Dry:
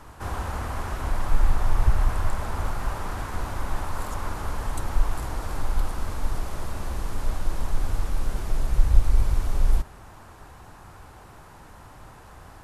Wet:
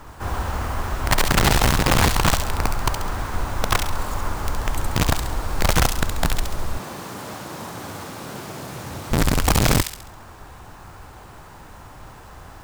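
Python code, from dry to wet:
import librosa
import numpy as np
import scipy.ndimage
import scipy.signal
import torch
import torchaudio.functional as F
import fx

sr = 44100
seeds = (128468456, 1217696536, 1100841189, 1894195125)

y = fx.highpass(x, sr, hz=130.0, slope=24, at=(6.78, 9.11))
y = (np.mod(10.0 ** (16.5 / 20.0) * y + 1.0, 2.0) - 1.0) / 10.0 ** (16.5 / 20.0)
y = fx.echo_wet_highpass(y, sr, ms=68, feedback_pct=44, hz=2700.0, wet_db=-3)
y = np.repeat(scipy.signal.resample_poly(y, 1, 2), 2)[:len(y)]
y = F.gain(torch.from_numpy(y), 4.5).numpy()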